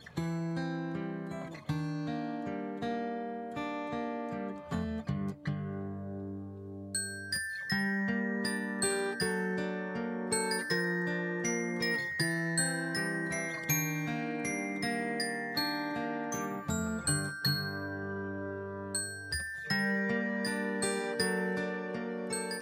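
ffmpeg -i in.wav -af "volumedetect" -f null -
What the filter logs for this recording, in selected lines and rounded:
mean_volume: -34.5 dB
max_volume: -17.2 dB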